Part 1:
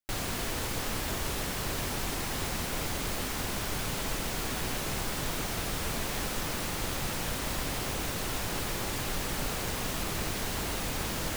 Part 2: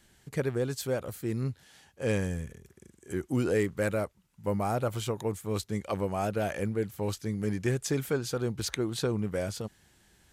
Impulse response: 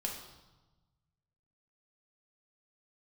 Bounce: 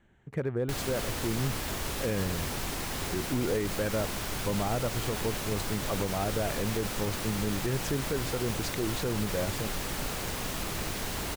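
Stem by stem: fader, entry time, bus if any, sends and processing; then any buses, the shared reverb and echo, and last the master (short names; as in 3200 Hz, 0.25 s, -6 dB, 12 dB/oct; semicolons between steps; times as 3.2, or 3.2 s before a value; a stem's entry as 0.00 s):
-1.0 dB, 0.60 s, no send, dry
+0.5 dB, 0.00 s, no send, Wiener smoothing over 9 samples; high shelf 3400 Hz -7.5 dB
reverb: off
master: limiter -20 dBFS, peak gain reduction 6.5 dB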